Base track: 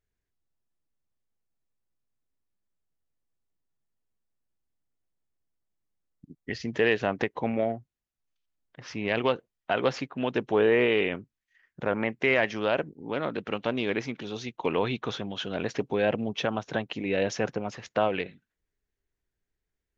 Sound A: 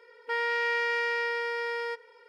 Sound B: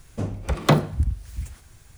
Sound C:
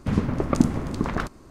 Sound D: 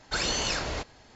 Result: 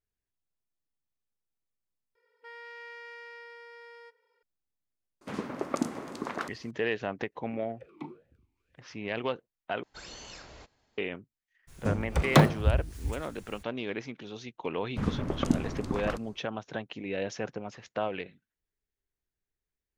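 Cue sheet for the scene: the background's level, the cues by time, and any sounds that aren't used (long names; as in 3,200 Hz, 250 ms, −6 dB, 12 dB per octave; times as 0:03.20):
base track −6.5 dB
0:02.15: overwrite with A −17.5 dB
0:05.21: mix in C −5 dB + high-pass filter 340 Hz
0:07.32: mix in B −12.5 dB + formant filter swept between two vowels e-u 2.1 Hz
0:09.83: overwrite with D −17.5 dB
0:11.67: mix in B −2 dB, fades 0.02 s
0:14.90: mix in C −7 dB, fades 0.10 s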